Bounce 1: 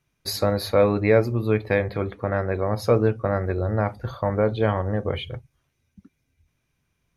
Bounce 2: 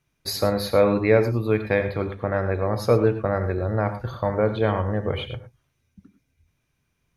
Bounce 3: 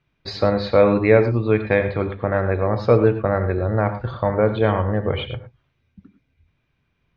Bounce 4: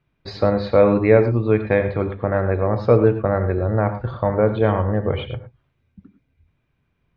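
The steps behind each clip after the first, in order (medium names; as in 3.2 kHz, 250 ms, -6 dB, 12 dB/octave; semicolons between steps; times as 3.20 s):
gated-style reverb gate 130 ms rising, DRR 9.5 dB
low-pass 4 kHz 24 dB/octave; trim +3.5 dB
treble shelf 2 kHz -7.5 dB; trim +1 dB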